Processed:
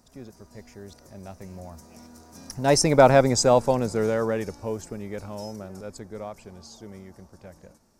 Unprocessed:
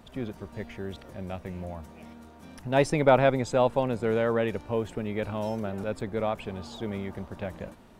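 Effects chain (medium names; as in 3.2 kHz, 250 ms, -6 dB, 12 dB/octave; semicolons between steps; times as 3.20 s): Doppler pass-by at 3.29 s, 11 m/s, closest 7.3 m; resonant high shelf 4.2 kHz +9 dB, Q 3; trim +5.5 dB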